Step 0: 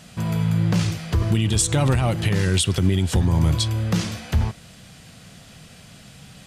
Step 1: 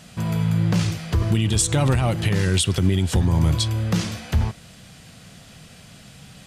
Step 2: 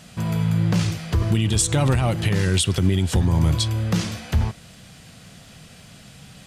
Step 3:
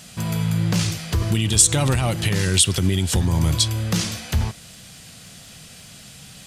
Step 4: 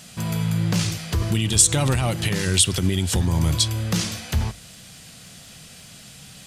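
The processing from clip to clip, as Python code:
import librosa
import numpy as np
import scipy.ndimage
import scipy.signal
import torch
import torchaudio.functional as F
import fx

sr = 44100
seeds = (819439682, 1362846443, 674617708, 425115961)

y1 = x
y2 = fx.dmg_crackle(y1, sr, seeds[0], per_s=12.0, level_db=-45.0)
y3 = fx.high_shelf(y2, sr, hz=3200.0, db=10.0)
y3 = y3 * 10.0 ** (-1.0 / 20.0)
y4 = fx.hum_notches(y3, sr, base_hz=50, count=2)
y4 = y4 * 10.0 ** (-1.0 / 20.0)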